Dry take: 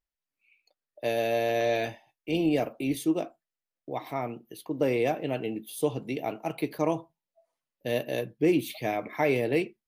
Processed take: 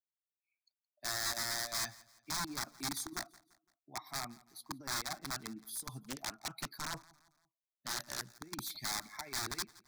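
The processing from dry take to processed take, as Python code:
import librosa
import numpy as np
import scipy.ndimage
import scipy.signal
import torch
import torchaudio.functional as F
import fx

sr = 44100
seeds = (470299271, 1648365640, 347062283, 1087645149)

y = fx.bin_expand(x, sr, power=1.5)
y = scipy.signal.sosfilt(scipy.signal.butter(2, 83.0, 'highpass', fs=sr, output='sos'), y)
y = fx.low_shelf(y, sr, hz=150.0, db=-10.0)
y = fx.over_compress(y, sr, threshold_db=-31.0, ratio=-0.5)
y = (np.mod(10.0 ** (28.0 / 20.0) * y + 1.0, 2.0) - 1.0) / 10.0 ** (28.0 / 20.0)
y = fx.peak_eq(y, sr, hz=4500.0, db=10.5, octaves=1.5)
y = fx.fixed_phaser(y, sr, hz=1200.0, stages=4)
y = fx.echo_feedback(y, sr, ms=170, feedback_pct=42, wet_db=-22.0)
y = fx.doppler_dist(y, sr, depth_ms=0.47, at=(6.04, 8.29))
y = F.gain(torch.from_numpy(y), -3.5).numpy()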